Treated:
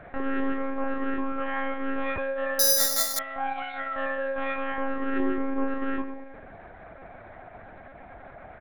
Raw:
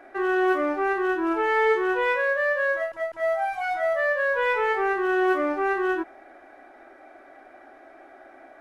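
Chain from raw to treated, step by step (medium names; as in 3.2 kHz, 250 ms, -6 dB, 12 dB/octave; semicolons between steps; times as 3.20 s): 5.17–5.67 s: peaking EQ 380 Hz +10 dB; compression 6:1, threshold -29 dBFS, peak gain reduction 17.5 dB; doubling 13 ms -10.5 dB; filtered feedback delay 108 ms, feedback 55%, low-pass 980 Hz, level -6 dB; monotone LPC vocoder at 8 kHz 270 Hz; 2.59–3.19 s: careless resampling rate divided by 8×, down filtered, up zero stuff; trim +2 dB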